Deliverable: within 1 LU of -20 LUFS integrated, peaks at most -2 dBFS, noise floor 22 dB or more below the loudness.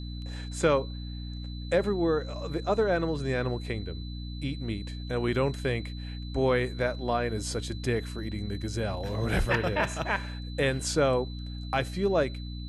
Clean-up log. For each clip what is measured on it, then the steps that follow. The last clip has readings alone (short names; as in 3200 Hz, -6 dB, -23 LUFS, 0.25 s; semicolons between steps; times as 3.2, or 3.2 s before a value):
hum 60 Hz; harmonics up to 300 Hz; hum level -35 dBFS; steady tone 4000 Hz; tone level -47 dBFS; loudness -30.0 LUFS; peak -12.0 dBFS; loudness target -20.0 LUFS
-> notches 60/120/180/240/300 Hz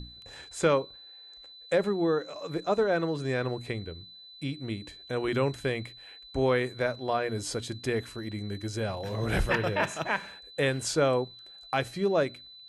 hum none; steady tone 4000 Hz; tone level -47 dBFS
-> notch 4000 Hz, Q 30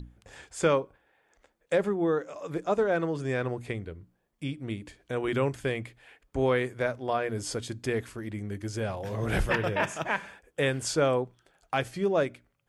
steady tone none; loudness -30.0 LUFS; peak -12.5 dBFS; loudness target -20.0 LUFS
-> gain +10 dB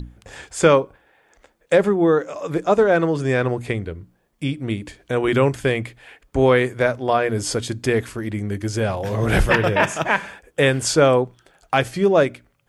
loudness -20.0 LUFS; peak -2.5 dBFS; noise floor -65 dBFS